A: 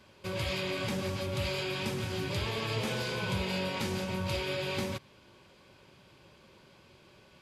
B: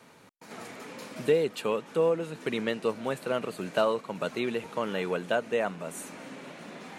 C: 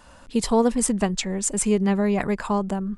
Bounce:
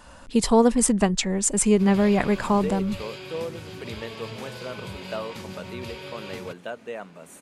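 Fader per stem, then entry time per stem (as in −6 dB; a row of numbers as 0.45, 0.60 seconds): −5.0, −7.0, +2.0 decibels; 1.55, 1.35, 0.00 seconds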